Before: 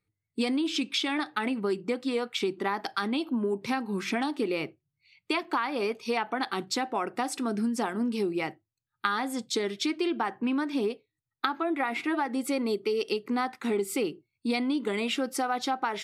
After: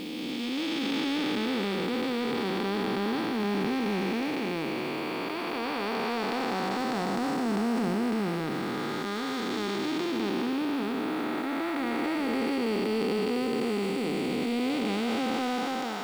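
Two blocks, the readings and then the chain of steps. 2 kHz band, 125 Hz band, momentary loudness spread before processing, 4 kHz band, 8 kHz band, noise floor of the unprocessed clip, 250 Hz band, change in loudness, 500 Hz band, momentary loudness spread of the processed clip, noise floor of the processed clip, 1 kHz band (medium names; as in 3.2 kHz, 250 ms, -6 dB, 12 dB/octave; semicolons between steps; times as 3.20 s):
-0.5 dB, +6.5 dB, 3 LU, -0.5 dB, -5.0 dB, under -85 dBFS, +2.0 dB, +0.5 dB, 0.0 dB, 4 LU, -33 dBFS, -1.0 dB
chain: spectral blur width 1260 ms; low-pass 7.5 kHz 12 dB/octave; transient shaper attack -10 dB, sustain +4 dB; bit crusher 10-bit; trim +8 dB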